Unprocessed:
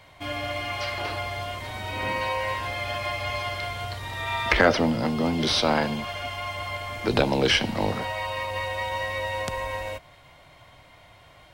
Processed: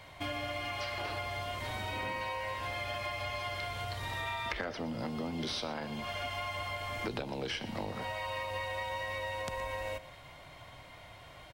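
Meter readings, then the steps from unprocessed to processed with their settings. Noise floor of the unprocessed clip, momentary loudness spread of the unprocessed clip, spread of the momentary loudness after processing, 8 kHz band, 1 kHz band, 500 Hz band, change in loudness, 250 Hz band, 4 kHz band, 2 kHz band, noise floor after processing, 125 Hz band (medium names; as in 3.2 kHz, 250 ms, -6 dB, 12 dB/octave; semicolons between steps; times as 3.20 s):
-53 dBFS, 11 LU, 14 LU, -11.0 dB, -9.0 dB, -11.5 dB, -10.5 dB, -13.0 dB, -11.0 dB, -10.0 dB, -52 dBFS, -10.0 dB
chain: compression 10:1, threshold -34 dBFS, peak gain reduction 21 dB; on a send: delay 119 ms -16 dB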